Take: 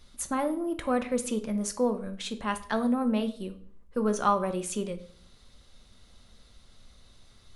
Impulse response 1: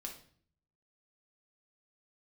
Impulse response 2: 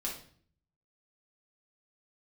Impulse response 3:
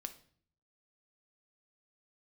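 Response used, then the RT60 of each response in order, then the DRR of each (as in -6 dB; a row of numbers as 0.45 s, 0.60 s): 3; 0.50 s, 0.50 s, 0.55 s; 0.5 dB, -3.5 dB, 8.0 dB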